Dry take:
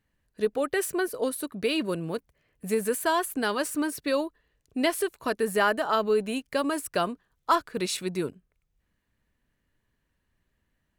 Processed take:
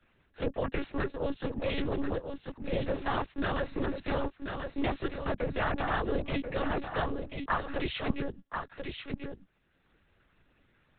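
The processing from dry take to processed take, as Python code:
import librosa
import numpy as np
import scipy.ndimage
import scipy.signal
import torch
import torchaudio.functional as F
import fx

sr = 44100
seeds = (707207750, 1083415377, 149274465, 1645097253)

p1 = fx.noise_vocoder(x, sr, seeds[0], bands=12)
p2 = fx.tilt_shelf(p1, sr, db=-4.0, hz=640.0, at=(7.67, 8.08))
p3 = fx.over_compress(p2, sr, threshold_db=-31.0, ratio=-1.0)
p4 = p2 + (p3 * librosa.db_to_amplitude(0.0))
p5 = fx.lpc_monotone(p4, sr, seeds[1], pitch_hz=280.0, order=10)
p6 = p5 + fx.echo_single(p5, sr, ms=1036, db=-8.5, dry=0)
p7 = fx.band_squash(p6, sr, depth_pct=40)
y = p7 * librosa.db_to_amplitude(-8.0)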